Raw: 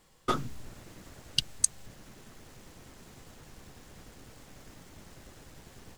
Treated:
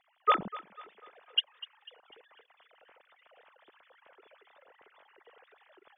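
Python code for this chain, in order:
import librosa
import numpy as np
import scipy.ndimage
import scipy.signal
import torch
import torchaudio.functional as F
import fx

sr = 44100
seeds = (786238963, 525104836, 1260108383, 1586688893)

y = fx.sine_speech(x, sr)
y = fx.echo_thinned(y, sr, ms=248, feedback_pct=46, hz=450.0, wet_db=-17)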